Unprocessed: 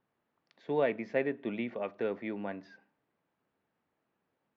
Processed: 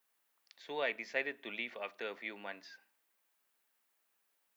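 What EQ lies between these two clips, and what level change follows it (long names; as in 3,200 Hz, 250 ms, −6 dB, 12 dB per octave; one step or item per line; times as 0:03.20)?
first difference
+13.5 dB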